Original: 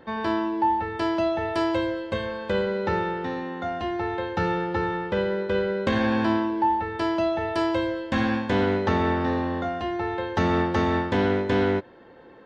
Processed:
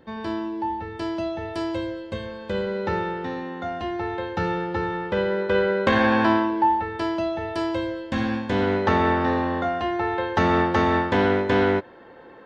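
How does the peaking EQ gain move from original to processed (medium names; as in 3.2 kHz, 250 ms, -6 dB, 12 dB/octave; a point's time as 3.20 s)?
peaking EQ 1.2 kHz 3 oct
2.39 s -6.5 dB
2.79 s -0.5 dB
4.90 s -0.5 dB
5.66 s +7.5 dB
6.24 s +7.5 dB
7.25 s -3 dB
8.43 s -3 dB
8.88 s +5 dB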